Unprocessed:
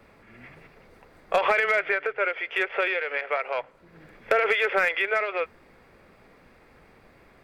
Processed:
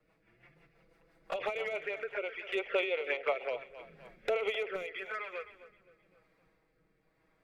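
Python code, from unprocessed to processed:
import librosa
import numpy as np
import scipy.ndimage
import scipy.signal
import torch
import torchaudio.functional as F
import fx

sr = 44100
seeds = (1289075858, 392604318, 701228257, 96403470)

y = fx.doppler_pass(x, sr, speed_mps=6, closest_m=5.2, pass_at_s=3.09)
y = fx.env_flanger(y, sr, rest_ms=6.5, full_db=-25.0)
y = fx.echo_feedback(y, sr, ms=260, feedback_pct=43, wet_db=-14.5)
y = fx.rotary_switch(y, sr, hz=6.0, then_hz=1.0, switch_at_s=3.58)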